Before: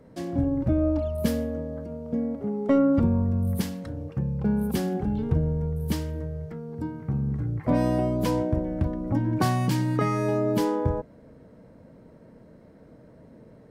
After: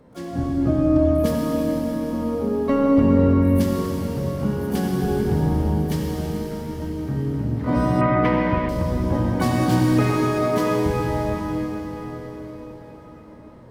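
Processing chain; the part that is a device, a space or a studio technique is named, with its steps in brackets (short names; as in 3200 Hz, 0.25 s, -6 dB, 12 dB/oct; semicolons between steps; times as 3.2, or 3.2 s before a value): shimmer-style reverb (harmoniser +12 st -10 dB; reverb RT60 5.5 s, pre-delay 62 ms, DRR -2.5 dB); 8.01–8.69 EQ curve 670 Hz 0 dB, 2200 Hz +10 dB, 7100 Hz -21 dB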